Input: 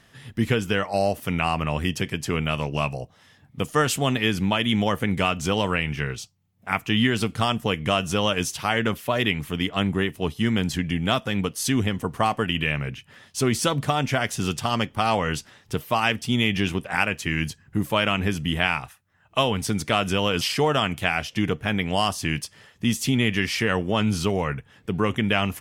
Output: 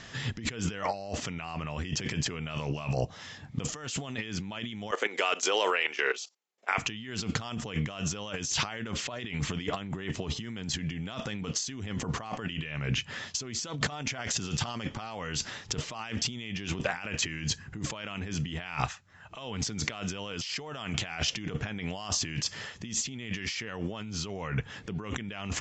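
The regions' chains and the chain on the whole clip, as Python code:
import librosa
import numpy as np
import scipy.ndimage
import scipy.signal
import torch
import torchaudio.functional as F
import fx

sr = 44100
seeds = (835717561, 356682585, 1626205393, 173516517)

y = fx.chain(x, sr, fx.ellip_bandpass(low_hz=400.0, high_hz=8700.0, order=3, stop_db=50),
    fx.level_steps(step_db=17), at=(4.91, 6.78))
y = scipy.signal.sosfilt(scipy.signal.cheby1(8, 1.0, 7500.0, 'lowpass', fs=sr, output='sos'), y)
y = fx.high_shelf(y, sr, hz=4000.0, db=6.0)
y = fx.over_compress(y, sr, threshold_db=-35.0, ratio=-1.0)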